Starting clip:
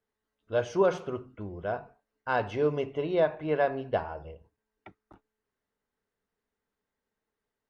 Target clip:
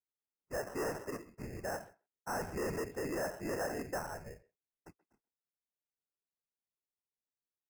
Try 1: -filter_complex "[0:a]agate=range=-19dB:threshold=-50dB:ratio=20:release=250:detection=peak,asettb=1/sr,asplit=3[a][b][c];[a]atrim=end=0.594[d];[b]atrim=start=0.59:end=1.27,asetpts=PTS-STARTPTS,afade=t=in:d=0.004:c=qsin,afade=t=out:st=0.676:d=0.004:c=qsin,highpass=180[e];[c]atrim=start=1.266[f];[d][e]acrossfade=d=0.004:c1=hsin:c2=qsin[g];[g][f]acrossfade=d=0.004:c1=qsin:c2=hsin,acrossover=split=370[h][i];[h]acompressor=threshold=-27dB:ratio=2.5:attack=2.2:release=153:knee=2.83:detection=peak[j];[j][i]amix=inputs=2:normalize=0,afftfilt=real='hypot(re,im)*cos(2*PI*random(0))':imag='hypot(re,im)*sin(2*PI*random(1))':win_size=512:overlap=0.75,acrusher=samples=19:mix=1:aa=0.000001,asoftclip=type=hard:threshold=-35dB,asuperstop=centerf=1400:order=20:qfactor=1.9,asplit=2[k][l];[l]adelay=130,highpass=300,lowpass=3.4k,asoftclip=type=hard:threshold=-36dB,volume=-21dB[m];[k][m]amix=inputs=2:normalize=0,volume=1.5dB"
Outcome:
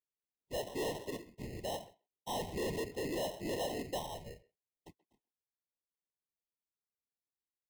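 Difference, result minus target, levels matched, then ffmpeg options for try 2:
4000 Hz band +8.5 dB
-filter_complex "[0:a]agate=range=-19dB:threshold=-50dB:ratio=20:release=250:detection=peak,asettb=1/sr,asplit=3[a][b][c];[a]atrim=end=0.594[d];[b]atrim=start=0.59:end=1.27,asetpts=PTS-STARTPTS,afade=t=in:d=0.004:c=qsin,afade=t=out:st=0.676:d=0.004:c=qsin,highpass=180[e];[c]atrim=start=1.266[f];[d][e]acrossfade=d=0.004:c1=hsin:c2=qsin[g];[g][f]acrossfade=d=0.004:c1=qsin:c2=hsin,acrossover=split=370[h][i];[h]acompressor=threshold=-27dB:ratio=2.5:attack=2.2:release=153:knee=2.83:detection=peak[j];[j][i]amix=inputs=2:normalize=0,afftfilt=real='hypot(re,im)*cos(2*PI*random(0))':imag='hypot(re,im)*sin(2*PI*random(1))':win_size=512:overlap=0.75,acrusher=samples=19:mix=1:aa=0.000001,asoftclip=type=hard:threshold=-35dB,asuperstop=centerf=3500:order=20:qfactor=1.9,asplit=2[k][l];[l]adelay=130,highpass=300,lowpass=3.4k,asoftclip=type=hard:threshold=-36dB,volume=-21dB[m];[k][m]amix=inputs=2:normalize=0,volume=1.5dB"

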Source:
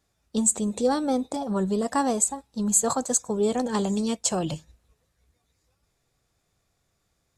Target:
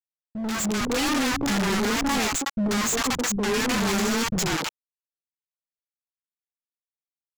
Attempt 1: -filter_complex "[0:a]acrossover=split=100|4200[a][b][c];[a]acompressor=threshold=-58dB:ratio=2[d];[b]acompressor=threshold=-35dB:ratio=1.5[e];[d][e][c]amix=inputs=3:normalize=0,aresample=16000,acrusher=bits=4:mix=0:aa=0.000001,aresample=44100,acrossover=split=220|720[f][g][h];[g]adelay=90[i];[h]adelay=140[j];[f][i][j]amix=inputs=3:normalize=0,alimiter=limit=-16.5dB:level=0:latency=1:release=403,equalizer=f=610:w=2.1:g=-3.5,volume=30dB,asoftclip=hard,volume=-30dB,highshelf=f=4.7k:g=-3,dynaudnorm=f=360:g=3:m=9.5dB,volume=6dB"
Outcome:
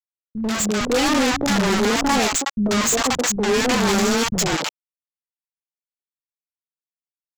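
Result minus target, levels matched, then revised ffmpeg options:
overloaded stage: distortion -4 dB; 500 Hz band +2.5 dB
-filter_complex "[0:a]acrossover=split=100|4200[a][b][c];[a]acompressor=threshold=-58dB:ratio=2[d];[b]acompressor=threshold=-35dB:ratio=1.5[e];[d][e][c]amix=inputs=3:normalize=0,aresample=16000,acrusher=bits=4:mix=0:aa=0.000001,aresample=44100,acrossover=split=220|720[f][g][h];[g]adelay=90[i];[h]adelay=140[j];[f][i][j]amix=inputs=3:normalize=0,alimiter=limit=-16.5dB:level=0:latency=1:release=403,equalizer=f=610:w=2.1:g=-12.5,volume=37dB,asoftclip=hard,volume=-37dB,highshelf=f=4.7k:g=-3,dynaudnorm=f=360:g=3:m=9.5dB,volume=6dB"

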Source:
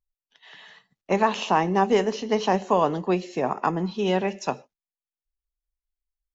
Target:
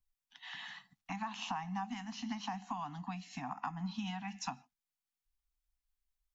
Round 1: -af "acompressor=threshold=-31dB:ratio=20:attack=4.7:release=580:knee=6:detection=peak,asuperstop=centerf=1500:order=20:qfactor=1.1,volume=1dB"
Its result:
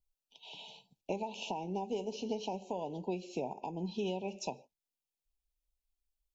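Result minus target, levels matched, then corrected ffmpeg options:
500 Hz band +17.0 dB
-af "acompressor=threshold=-31dB:ratio=20:attack=4.7:release=580:knee=6:detection=peak,asuperstop=centerf=450:order=20:qfactor=1.1,volume=1dB"

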